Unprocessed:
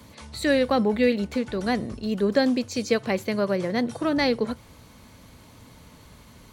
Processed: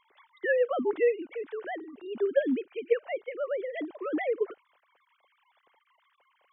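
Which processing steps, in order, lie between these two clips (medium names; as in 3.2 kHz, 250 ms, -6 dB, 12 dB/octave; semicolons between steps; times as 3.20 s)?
formants replaced by sine waves; trim -6 dB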